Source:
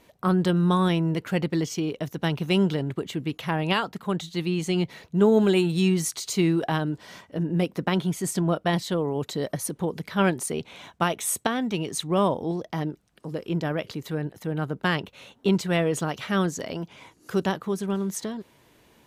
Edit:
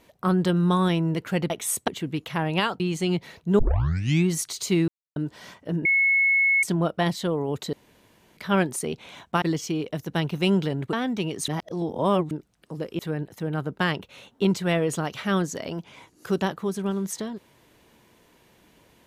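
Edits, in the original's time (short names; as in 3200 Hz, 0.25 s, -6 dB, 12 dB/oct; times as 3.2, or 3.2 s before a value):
1.5–3.01 swap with 11.09–11.47
3.93–4.47 cut
5.26 tape start 0.67 s
6.55–6.83 mute
7.52–8.3 bleep 2190 Hz -17 dBFS
9.4–10.04 room tone
12.02–12.85 reverse
13.53–14.03 cut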